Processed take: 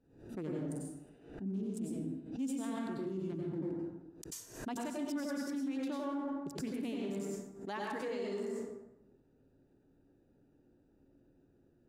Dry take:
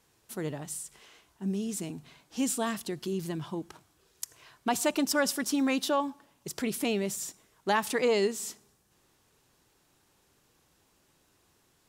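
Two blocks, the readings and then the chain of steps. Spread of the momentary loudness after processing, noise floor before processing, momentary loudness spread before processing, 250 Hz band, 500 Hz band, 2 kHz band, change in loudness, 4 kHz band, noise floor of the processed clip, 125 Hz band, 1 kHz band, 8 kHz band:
9 LU, -69 dBFS, 15 LU, -5.0 dB, -9.0 dB, -13.5 dB, -8.5 dB, -15.5 dB, -69 dBFS, -4.0 dB, -11.5 dB, -15.5 dB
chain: Wiener smoothing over 41 samples; bell 270 Hz +10 dB 0.33 oct; plate-style reverb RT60 0.92 s, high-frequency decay 0.55×, pre-delay 80 ms, DRR -2.5 dB; reverse; compressor 4:1, threshold -33 dBFS, peak gain reduction 19 dB; reverse; limiter -28 dBFS, peak gain reduction 9.5 dB; high shelf 9900 Hz -5 dB; backwards sustainer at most 95 dB/s; gain -2.5 dB

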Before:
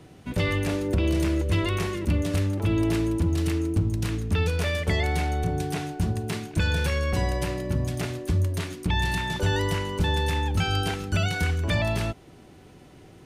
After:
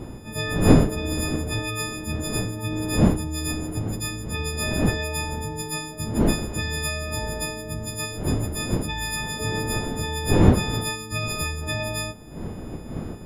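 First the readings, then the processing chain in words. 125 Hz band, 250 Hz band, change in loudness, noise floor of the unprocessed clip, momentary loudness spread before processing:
-0.5 dB, +3.0 dB, +1.0 dB, -50 dBFS, 4 LU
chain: frequency quantiser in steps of 6 st; wind noise 270 Hz -21 dBFS; gain -5 dB

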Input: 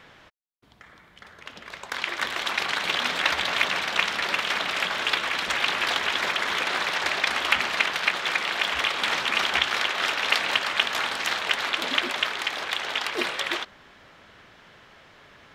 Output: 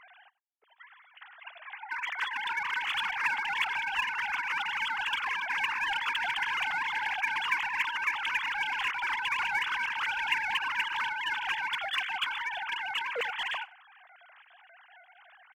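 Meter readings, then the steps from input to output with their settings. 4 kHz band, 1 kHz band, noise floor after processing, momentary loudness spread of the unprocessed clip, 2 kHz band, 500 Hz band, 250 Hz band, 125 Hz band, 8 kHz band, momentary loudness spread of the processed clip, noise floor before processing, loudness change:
-9.5 dB, -3.5 dB, -60 dBFS, 6 LU, -4.0 dB, -14.0 dB, under -15 dB, under -10 dB, -14.0 dB, 5 LU, -53 dBFS, -6.0 dB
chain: sine-wave speech; in parallel at -3.5 dB: overloaded stage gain 27 dB; on the sum: echo 96 ms -22.5 dB; gain -8.5 dB

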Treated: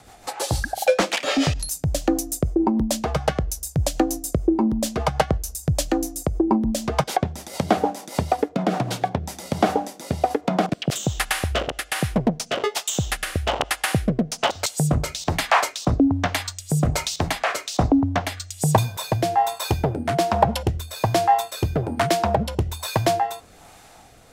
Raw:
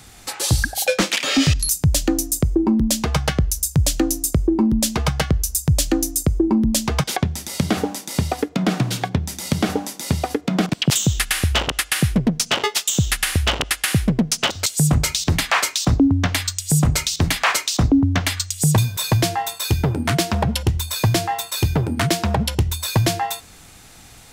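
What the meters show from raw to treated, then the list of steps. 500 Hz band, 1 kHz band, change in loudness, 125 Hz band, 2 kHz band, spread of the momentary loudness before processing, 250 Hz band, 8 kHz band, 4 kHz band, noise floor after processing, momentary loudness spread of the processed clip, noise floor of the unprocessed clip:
+2.5 dB, +3.5 dB, -3.5 dB, -5.5 dB, -4.0 dB, 6 LU, -3.0 dB, -7.5 dB, -6.5 dB, -48 dBFS, 6 LU, -44 dBFS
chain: bell 740 Hz +14.5 dB 1.6 oct; rotary speaker horn 6.7 Hz, later 1.2 Hz, at 8.81; gain -5 dB

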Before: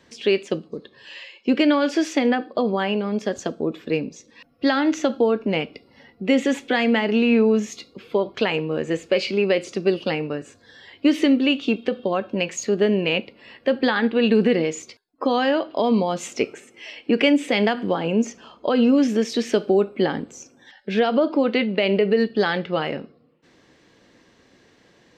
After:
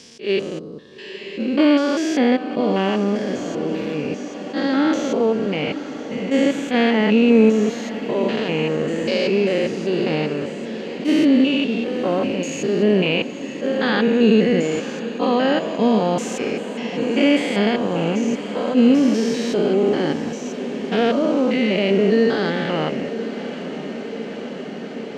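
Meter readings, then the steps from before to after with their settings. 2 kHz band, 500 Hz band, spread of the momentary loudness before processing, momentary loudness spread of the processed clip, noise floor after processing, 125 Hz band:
+0.5 dB, +2.0 dB, 11 LU, 13 LU, -32 dBFS, +4.5 dB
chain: stepped spectrum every 0.2 s; diffused feedback echo 0.982 s, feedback 79%, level -13 dB; attack slew limiter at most 220 dB/s; gain +5 dB

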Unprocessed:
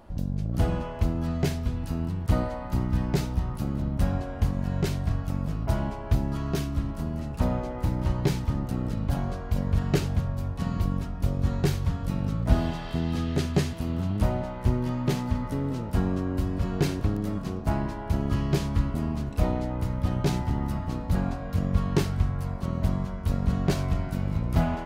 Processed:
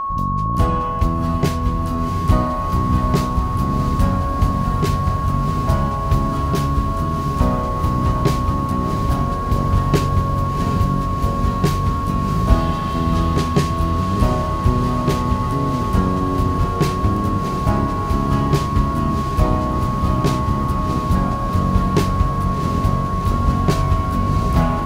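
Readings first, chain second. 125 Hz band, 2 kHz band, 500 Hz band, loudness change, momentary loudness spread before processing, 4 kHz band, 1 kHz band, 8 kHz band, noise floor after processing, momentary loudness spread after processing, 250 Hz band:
+8.0 dB, +8.0 dB, +8.0 dB, +9.0 dB, 4 LU, +8.0 dB, +17.5 dB, +8.0 dB, -22 dBFS, 2 LU, +8.0 dB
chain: whine 1100 Hz -27 dBFS; diffused feedback echo 0.716 s, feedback 76%, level -7 dB; gain +6.5 dB

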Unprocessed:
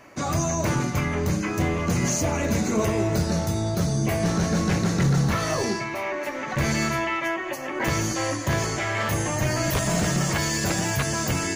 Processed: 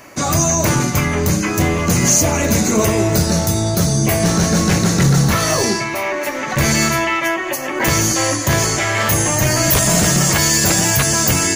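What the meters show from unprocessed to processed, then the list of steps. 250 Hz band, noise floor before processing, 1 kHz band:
+7.5 dB, -31 dBFS, +8.0 dB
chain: high shelf 5700 Hz +11.5 dB; gain +7.5 dB

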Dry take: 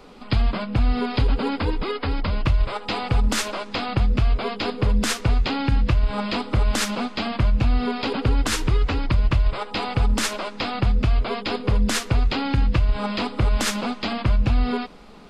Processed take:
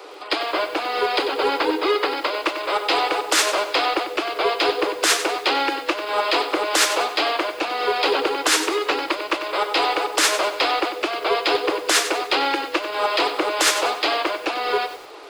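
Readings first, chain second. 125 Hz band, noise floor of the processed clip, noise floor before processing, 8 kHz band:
under -30 dB, -34 dBFS, -38 dBFS, +7.5 dB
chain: steep high-pass 310 Hz 96 dB/oct; in parallel at -4 dB: soft clip -25.5 dBFS, distortion -11 dB; on the sum: lo-fi delay 95 ms, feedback 35%, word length 7-bit, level -10 dB; gain +4.5 dB

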